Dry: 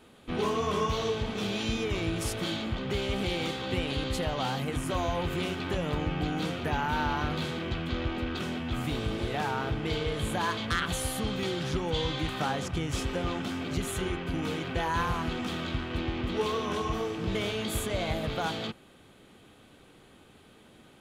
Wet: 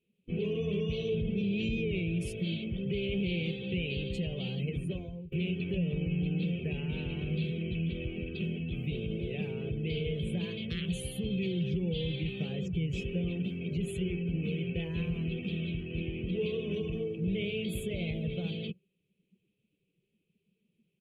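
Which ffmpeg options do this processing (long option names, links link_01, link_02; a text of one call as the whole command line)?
ffmpeg -i in.wav -filter_complex "[0:a]asettb=1/sr,asplit=3[link_01][link_02][link_03];[link_01]atrim=end=1.124[link_04];[link_02]atrim=start=1.12:end=1.91,asetpts=PTS-STARTPTS,afade=type=in:duration=0.004:curve=qsin,afade=type=out:start_time=0.786:duration=0.004:curve=qsin,lowshelf=frequency=330:gain=9[link_05];[link_03]atrim=start=1.906[link_06];[link_04][link_05]acrossfade=duration=0.004:curve1=hsin:curve2=qsin[link_07];[link_07][link_06]acrossfade=duration=0.004:curve1=qsin:curve2=hsin,asplit=2[link_08][link_09];[link_08]atrim=end=5.32,asetpts=PTS-STARTPTS,afade=type=out:start_time=4.81:duration=0.51:silence=0.0707946[link_10];[link_09]atrim=start=5.32,asetpts=PTS-STARTPTS,afade=type=in:duration=0.004:curve=hsin:silence=0.0707946[link_11];[link_10][link_11]concat=n=2:v=0:a=1,afftdn=noise_reduction=23:noise_floor=-39,firequalizer=gain_entry='entry(110,0);entry(180,15);entry(260,-8);entry(400,7);entry(860,-24);entry(1400,-23);entry(2500,10);entry(3600,-3);entry(5700,-6);entry(14000,5)':delay=0.05:min_phase=1,alimiter=limit=-18.5dB:level=0:latency=1:release=49,volume=-5.5dB" out.wav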